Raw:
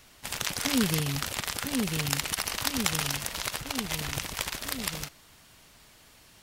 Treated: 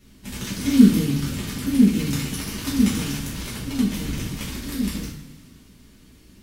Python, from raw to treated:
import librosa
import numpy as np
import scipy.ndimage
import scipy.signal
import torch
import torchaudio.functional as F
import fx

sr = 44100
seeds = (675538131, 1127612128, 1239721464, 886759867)

y = fx.low_shelf_res(x, sr, hz=420.0, db=14.0, q=1.5)
y = fx.rev_double_slope(y, sr, seeds[0], early_s=0.45, late_s=2.0, knee_db=-16, drr_db=-8.5)
y = y * 10.0 ** (-11.0 / 20.0)